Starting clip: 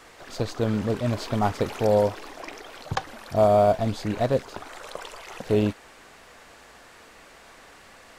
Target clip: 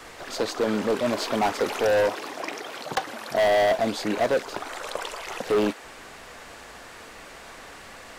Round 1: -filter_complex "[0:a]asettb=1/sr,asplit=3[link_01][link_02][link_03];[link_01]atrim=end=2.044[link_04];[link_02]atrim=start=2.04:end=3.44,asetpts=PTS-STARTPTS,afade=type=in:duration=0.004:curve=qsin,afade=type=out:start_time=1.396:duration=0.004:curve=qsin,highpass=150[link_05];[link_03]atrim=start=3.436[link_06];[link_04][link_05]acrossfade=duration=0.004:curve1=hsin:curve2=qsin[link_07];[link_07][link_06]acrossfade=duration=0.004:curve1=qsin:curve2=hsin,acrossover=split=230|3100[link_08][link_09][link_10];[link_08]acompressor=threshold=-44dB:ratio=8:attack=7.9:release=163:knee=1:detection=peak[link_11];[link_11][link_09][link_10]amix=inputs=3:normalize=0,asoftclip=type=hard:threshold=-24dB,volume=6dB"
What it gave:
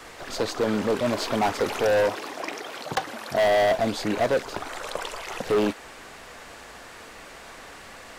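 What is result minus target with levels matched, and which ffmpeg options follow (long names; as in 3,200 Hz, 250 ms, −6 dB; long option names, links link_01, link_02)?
downward compressor: peak gain reduction −9 dB
-filter_complex "[0:a]asettb=1/sr,asplit=3[link_01][link_02][link_03];[link_01]atrim=end=2.044[link_04];[link_02]atrim=start=2.04:end=3.44,asetpts=PTS-STARTPTS,afade=type=in:duration=0.004:curve=qsin,afade=type=out:start_time=1.396:duration=0.004:curve=qsin,highpass=150[link_05];[link_03]atrim=start=3.436[link_06];[link_04][link_05]acrossfade=duration=0.004:curve1=hsin:curve2=qsin[link_07];[link_07][link_06]acrossfade=duration=0.004:curve1=qsin:curve2=hsin,acrossover=split=230|3100[link_08][link_09][link_10];[link_08]acompressor=threshold=-54.5dB:ratio=8:attack=7.9:release=163:knee=1:detection=peak[link_11];[link_11][link_09][link_10]amix=inputs=3:normalize=0,asoftclip=type=hard:threshold=-24dB,volume=6dB"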